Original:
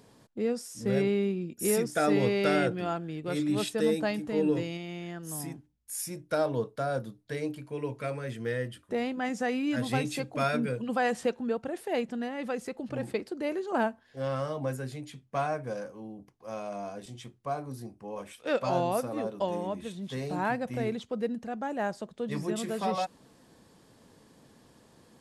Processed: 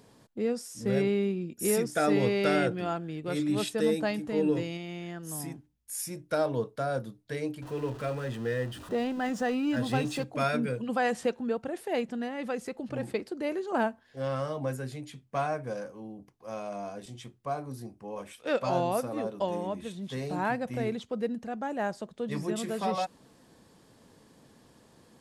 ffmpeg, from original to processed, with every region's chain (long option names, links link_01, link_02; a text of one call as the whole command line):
ffmpeg -i in.wav -filter_complex "[0:a]asettb=1/sr,asplit=3[link_01][link_02][link_03];[link_01]atrim=end=7.624[link_04];[link_02]atrim=start=7.62:end=10.24,asetpts=PTS-STARTPTS,afade=type=in:duration=0.004:curve=qsin,afade=type=out:start_time=2.616:duration=0.004:curve=qsin,aeval=exprs='val(0)+0.5*0.0106*sgn(val(0))':channel_layout=same,highshelf=frequency=7300:gain=-8.5,bandreject=frequency=2200:width=5.8[link_05];[link_03]atrim=start=10.236[link_06];[link_04][link_05]acrossfade=duration=0.004:curve1=hsin:curve2=qsin[link_07];[link_07][link_06]acrossfade=duration=0.004:curve1=qsin:curve2=hsin" out.wav